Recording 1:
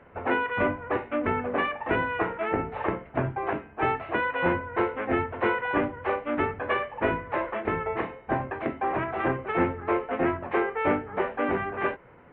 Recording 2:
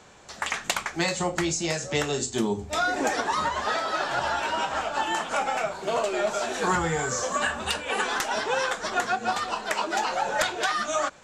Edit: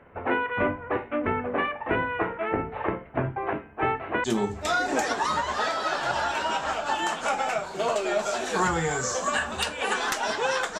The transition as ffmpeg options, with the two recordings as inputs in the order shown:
-filter_complex "[0:a]apad=whole_dur=10.79,atrim=end=10.79,atrim=end=4.242[s0];[1:a]atrim=start=2.318:end=8.87[s1];[s0][s1]acrossfade=d=0.004:c1=hsin:c2=hsin,asplit=2[s2][s3];[s3]afade=t=in:st=3.46:d=0.01,afade=t=out:st=4.24:d=0.01,aecho=0:1:550|1100|1650|2200|2750:0.266073|0.119733|0.0538797|0.0242459|0.0109106[s4];[s2][s4]amix=inputs=2:normalize=0"

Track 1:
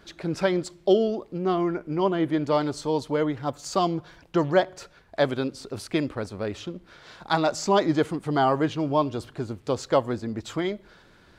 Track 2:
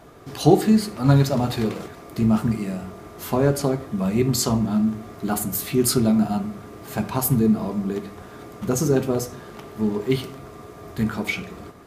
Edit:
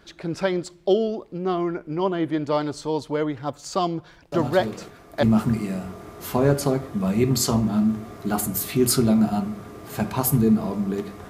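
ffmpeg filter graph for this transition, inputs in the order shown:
-filter_complex "[1:a]asplit=2[s0][s1];[0:a]apad=whole_dur=11.29,atrim=end=11.29,atrim=end=5.232[s2];[s1]atrim=start=2.208:end=8.27[s3];[s0]atrim=start=1.3:end=2.21,asetpts=PTS-STARTPTS,volume=0.447,afade=t=in:d=0.004:c=hsin,afade=t=out:st=0.906:d=0.004:c=hsin,adelay=4320[s4];[s2][s3]acrossfade=d=0.004:c1=hsin:c2=hsin[s5];[s5][s4]amix=inputs=2:normalize=0"

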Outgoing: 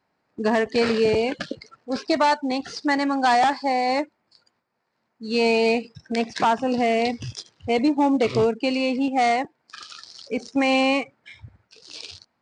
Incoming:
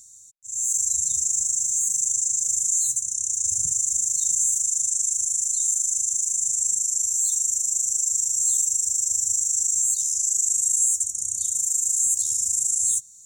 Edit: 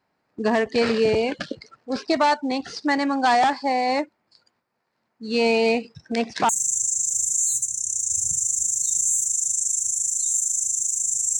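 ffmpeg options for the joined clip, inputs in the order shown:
-filter_complex "[0:a]apad=whole_dur=11.39,atrim=end=11.39,atrim=end=6.492[s0];[1:a]atrim=start=1.828:end=6.73[s1];[s0][s1]acrossfade=d=0.004:c1=hsin:c2=hsin"

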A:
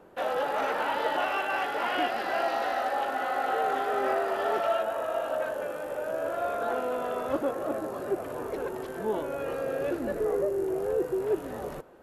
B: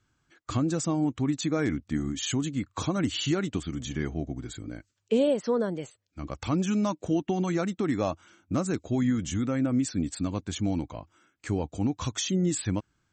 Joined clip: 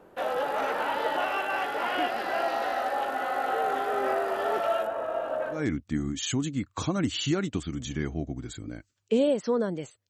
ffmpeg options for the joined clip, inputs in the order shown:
-filter_complex "[0:a]asettb=1/sr,asplit=3[s0][s1][s2];[s0]atrim=end=4.874[s3];[s1]atrim=start=4.87:end=5.67,asetpts=PTS-STARTPTS,afade=t=in:d=0.004:c=qsin,afade=t=out:st=0.796:d=0.004:c=qsin,aemphasis=mode=reproduction:type=75kf[s4];[s2]atrim=start=5.666[s5];[s3][s4]acrossfade=d=0.004:c1=hsin:c2=qsin[s6];[s6][s5]acrossfade=d=0.004:c1=qsin:c2=hsin,apad=whole_dur=10.09,atrim=end=10.09,atrim=end=5.67,asetpts=PTS-STARTPTS[s7];[1:a]atrim=start=1.49:end=6.09,asetpts=PTS-STARTPTS[s8];[s7][s8]acrossfade=d=0.18:c1=tri:c2=tri"

